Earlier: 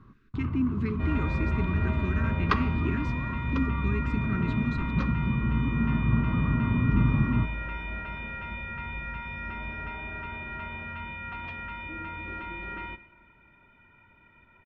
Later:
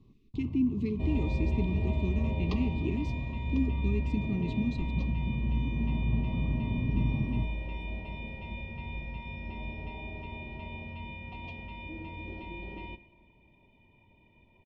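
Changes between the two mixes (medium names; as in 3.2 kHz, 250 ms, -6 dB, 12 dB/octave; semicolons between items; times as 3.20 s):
first sound -6.5 dB; master: add Butterworth band-stop 1.5 kHz, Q 0.8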